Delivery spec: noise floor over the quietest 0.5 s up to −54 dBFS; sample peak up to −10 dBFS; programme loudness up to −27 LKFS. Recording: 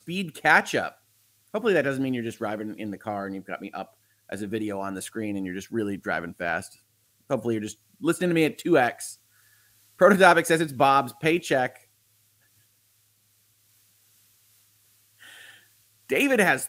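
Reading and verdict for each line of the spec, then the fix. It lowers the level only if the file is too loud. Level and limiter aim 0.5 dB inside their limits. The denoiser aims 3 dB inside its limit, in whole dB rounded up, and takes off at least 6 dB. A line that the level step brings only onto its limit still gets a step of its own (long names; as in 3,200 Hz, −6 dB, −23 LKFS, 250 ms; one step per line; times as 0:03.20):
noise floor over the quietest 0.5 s −66 dBFS: in spec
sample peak −3.5 dBFS: out of spec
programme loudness −24.5 LKFS: out of spec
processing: level −3 dB
brickwall limiter −10.5 dBFS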